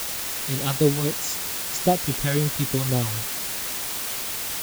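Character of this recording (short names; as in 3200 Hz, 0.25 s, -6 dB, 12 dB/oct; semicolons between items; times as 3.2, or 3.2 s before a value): phasing stages 2, 3.8 Hz, lowest notch 370–1600 Hz; a quantiser's noise floor 6-bit, dither triangular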